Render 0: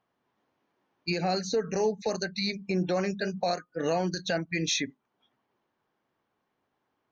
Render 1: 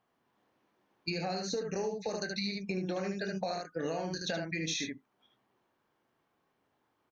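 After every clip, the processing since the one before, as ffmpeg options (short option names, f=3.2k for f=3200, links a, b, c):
-filter_complex "[0:a]asplit=2[a][b];[b]aecho=0:1:25|75:0.355|0.596[c];[a][c]amix=inputs=2:normalize=0,acompressor=threshold=-32dB:ratio=6"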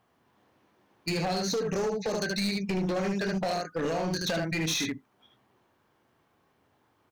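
-af "equalizer=f=84:t=o:w=1.3:g=7,asoftclip=type=hard:threshold=-33dB,volume=7.5dB"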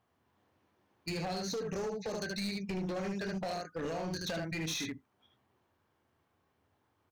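-af "equalizer=f=85:t=o:w=0.5:g=9,volume=-7.5dB"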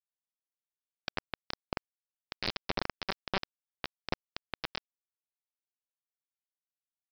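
-af "aeval=exprs='0.0316*(cos(1*acos(clip(val(0)/0.0316,-1,1)))-cos(1*PI/2))+0.00708*(cos(8*acos(clip(val(0)/0.0316,-1,1)))-cos(8*PI/2))':c=same,aresample=11025,acrusher=bits=4:mix=0:aa=0.000001,aresample=44100,volume=7.5dB"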